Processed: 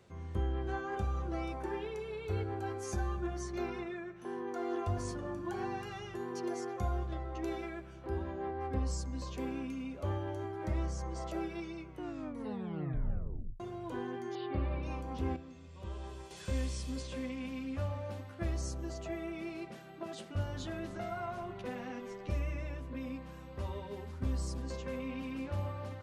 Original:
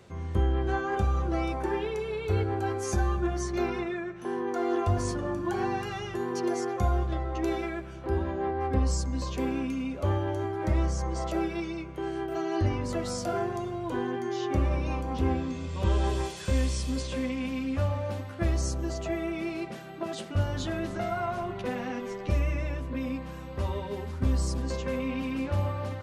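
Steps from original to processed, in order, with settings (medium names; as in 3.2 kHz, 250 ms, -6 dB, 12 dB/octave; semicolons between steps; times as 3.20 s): 11.87 s: tape stop 1.73 s; 14.35–14.83 s: steep low-pass 4.7 kHz 96 dB/octave; 15.36–16.31 s: feedback comb 74 Hz, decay 1.1 s, harmonics all, mix 70%; trim -8.5 dB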